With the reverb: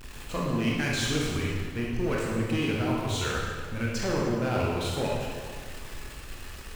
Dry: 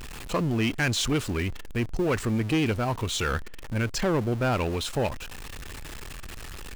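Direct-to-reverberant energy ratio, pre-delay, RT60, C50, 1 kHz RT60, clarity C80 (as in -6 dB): -4.0 dB, 20 ms, 1.8 s, -1.0 dB, 1.7 s, 1.5 dB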